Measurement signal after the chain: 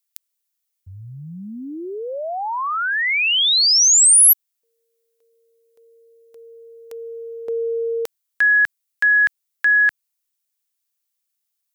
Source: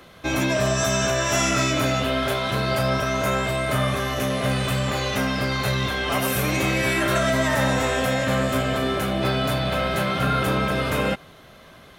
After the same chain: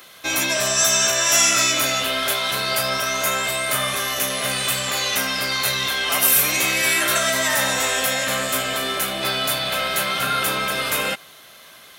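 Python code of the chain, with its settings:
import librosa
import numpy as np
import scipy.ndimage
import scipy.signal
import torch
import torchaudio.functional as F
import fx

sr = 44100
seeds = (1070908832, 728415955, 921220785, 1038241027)

y = fx.tilt_eq(x, sr, slope=4.0)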